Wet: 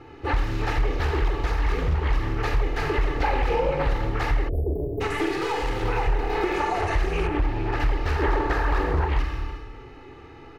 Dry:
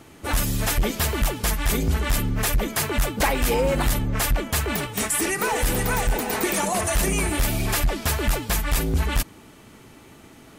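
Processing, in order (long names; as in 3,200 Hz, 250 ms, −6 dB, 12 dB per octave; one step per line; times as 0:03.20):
high-frequency loss of the air 270 metres
notch filter 3,300 Hz, Q 8.6
0:05.26–0:05.83: gain into a clipping stage and back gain 29.5 dB
comb filter 2.4 ms, depth 93%
slap from a distant wall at 61 metres, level −19 dB
four-comb reverb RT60 1 s, combs from 27 ms, DRR 1 dB
0:08.22–0:09.07: gain on a spectral selection 260–1,900 Hz +7 dB
downward compressor 2.5 to 1, threshold −22 dBFS, peak gain reduction 8.5 dB
0:04.49–0:05.01: time-frequency box erased 710–11,000 Hz
0:07.27–0:07.80: high-shelf EQ 3,400 Hz −12 dB
highs frequency-modulated by the lows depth 0.46 ms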